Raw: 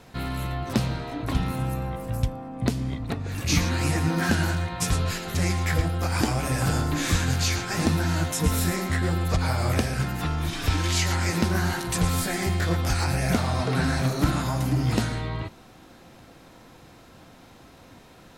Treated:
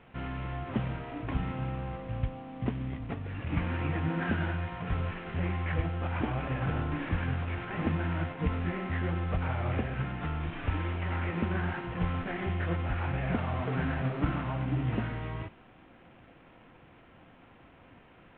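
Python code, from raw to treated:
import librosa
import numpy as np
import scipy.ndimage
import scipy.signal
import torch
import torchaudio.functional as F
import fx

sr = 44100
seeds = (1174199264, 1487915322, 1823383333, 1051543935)

y = fx.cvsd(x, sr, bps=16000)
y = y * 10.0 ** (-6.0 / 20.0)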